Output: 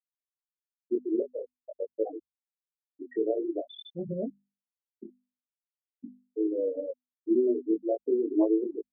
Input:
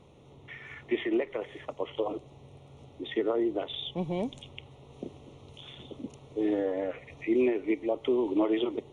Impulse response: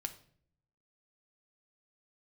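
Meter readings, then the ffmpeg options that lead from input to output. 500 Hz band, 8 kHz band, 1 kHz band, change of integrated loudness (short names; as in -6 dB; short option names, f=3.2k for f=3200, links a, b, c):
+0.5 dB, n/a, -7.5 dB, 0.0 dB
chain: -af "afftfilt=real='re*gte(hypot(re,im),0.126)':imag='im*gte(hypot(re,im),0.126)':win_size=1024:overlap=0.75,flanger=delay=18:depth=6.8:speed=0.46,bandreject=f=50:t=h:w=6,bandreject=f=100:t=h:w=6,bandreject=f=150:t=h:w=6,bandreject=f=200:t=h:w=6,bandreject=f=250:t=h:w=6,volume=3.5dB"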